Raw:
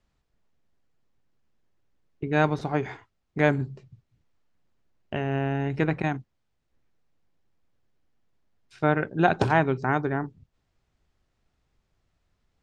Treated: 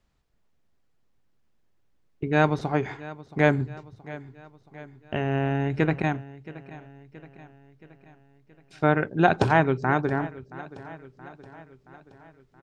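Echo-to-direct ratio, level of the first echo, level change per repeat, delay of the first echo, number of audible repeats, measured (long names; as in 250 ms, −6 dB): −16.5 dB, −18.0 dB, −5.0 dB, 674 ms, 4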